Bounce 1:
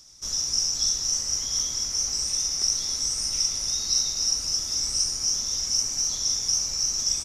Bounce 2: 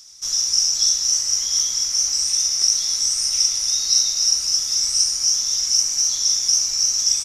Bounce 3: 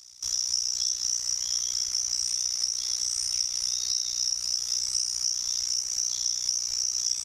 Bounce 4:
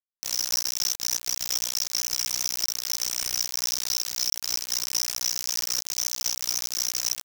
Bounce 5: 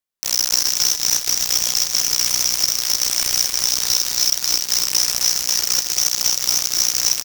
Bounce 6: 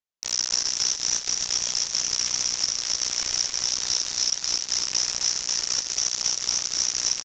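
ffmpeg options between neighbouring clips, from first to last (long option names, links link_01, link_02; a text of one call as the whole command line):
ffmpeg -i in.wav -af "tiltshelf=frequency=920:gain=-7" out.wav
ffmpeg -i in.wav -af "acompressor=threshold=-19dB:ratio=6,tremolo=f=61:d=0.919,equalizer=frequency=73:width=1.5:gain=3.5,volume=-1.5dB" out.wav
ffmpeg -i in.wav -af "acrusher=bits=3:mix=0:aa=0.000001" out.wav
ffmpeg -i in.wav -af "aecho=1:1:271|542|813|1084|1355|1626|1897:0.376|0.218|0.126|0.0733|0.0425|0.0247|0.0143,volume=8.5dB" out.wav
ffmpeg -i in.wav -af "aresample=16000,aresample=44100,volume=-6dB" out.wav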